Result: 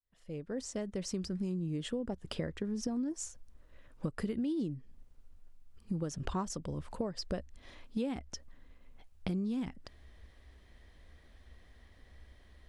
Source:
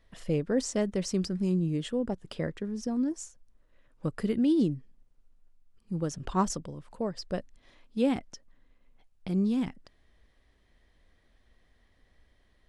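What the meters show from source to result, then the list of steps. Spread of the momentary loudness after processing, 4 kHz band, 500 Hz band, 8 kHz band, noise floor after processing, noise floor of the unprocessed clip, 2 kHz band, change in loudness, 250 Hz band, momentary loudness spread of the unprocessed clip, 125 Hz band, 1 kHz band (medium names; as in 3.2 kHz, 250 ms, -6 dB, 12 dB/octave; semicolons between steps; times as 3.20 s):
10 LU, -3.5 dB, -7.5 dB, -4.0 dB, -61 dBFS, -67 dBFS, -5.5 dB, -7.5 dB, -7.0 dB, 10 LU, -6.0 dB, -8.5 dB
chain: fade-in on the opening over 3.12 s; peaking EQ 69 Hz +12 dB 0.34 oct; compression 8:1, threshold -38 dBFS, peak gain reduction 17 dB; trim +5.5 dB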